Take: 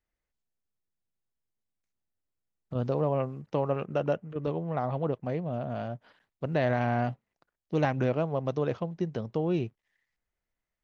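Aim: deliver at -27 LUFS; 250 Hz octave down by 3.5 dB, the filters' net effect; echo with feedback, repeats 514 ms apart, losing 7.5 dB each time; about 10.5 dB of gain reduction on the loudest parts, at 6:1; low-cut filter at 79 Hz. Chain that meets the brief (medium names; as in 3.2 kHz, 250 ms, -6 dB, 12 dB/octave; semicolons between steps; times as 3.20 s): high-pass 79 Hz; peaking EQ 250 Hz -5 dB; compression 6:1, threshold -35 dBFS; feedback delay 514 ms, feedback 42%, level -7.5 dB; trim +13.5 dB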